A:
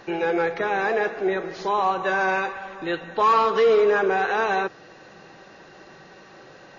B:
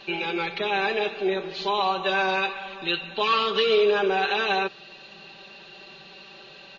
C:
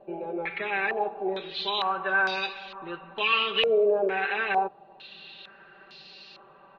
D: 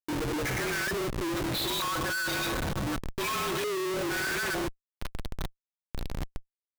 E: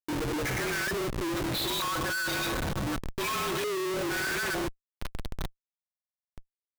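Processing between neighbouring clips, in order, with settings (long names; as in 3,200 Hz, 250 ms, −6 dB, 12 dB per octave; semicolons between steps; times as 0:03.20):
flat-topped bell 3,300 Hz +14.5 dB 1.1 octaves; comb filter 5.1 ms, depth 80%; level −6 dB
low-pass on a step sequencer 2.2 Hz 620–4,900 Hz; level −7 dB
frequency shifter −44 Hz; phaser with its sweep stopped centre 2,800 Hz, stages 6; comparator with hysteresis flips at −42 dBFS; level +2.5 dB
buffer that repeats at 0:05.82, samples 2,048, times 11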